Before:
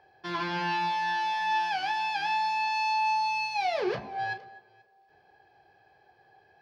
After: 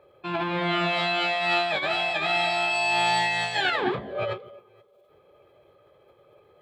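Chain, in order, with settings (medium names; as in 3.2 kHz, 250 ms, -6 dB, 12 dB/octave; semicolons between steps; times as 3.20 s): formant shift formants -5 st; trim +4 dB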